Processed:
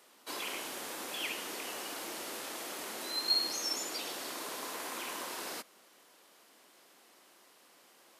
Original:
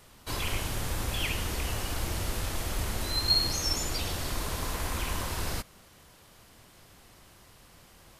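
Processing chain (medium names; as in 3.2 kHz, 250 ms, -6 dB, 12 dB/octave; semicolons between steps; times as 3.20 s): high-pass 270 Hz 24 dB/octave; trim -4.5 dB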